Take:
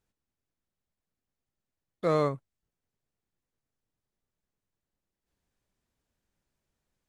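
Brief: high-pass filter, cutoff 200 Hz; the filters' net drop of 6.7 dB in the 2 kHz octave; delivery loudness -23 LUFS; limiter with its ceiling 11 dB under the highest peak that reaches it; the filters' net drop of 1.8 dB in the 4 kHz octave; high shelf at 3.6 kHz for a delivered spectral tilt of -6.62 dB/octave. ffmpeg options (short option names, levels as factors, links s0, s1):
-af "highpass=200,equalizer=f=2000:t=o:g=-9,highshelf=f=3600:g=8,equalizer=f=4000:t=o:g=-4.5,volume=6.31,alimiter=limit=0.282:level=0:latency=1"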